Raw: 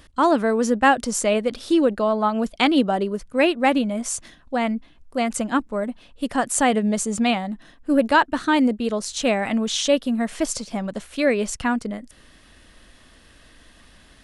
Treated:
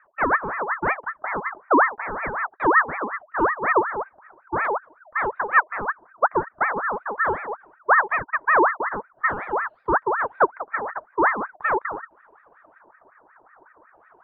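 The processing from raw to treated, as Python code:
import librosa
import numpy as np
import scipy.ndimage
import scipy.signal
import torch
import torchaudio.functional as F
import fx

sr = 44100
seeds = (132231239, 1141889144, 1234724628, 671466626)

y = fx.rider(x, sr, range_db=4, speed_s=0.5)
y = fx.formant_cascade(y, sr, vowel='u')
y = fx.filter_lfo_lowpass(y, sr, shape='square', hz=0.43, low_hz=810.0, high_hz=2100.0, q=0.86)
y = fx.ring_lfo(y, sr, carrier_hz=1100.0, swing_pct=45, hz=5.4)
y = y * librosa.db_to_amplitude(8.5)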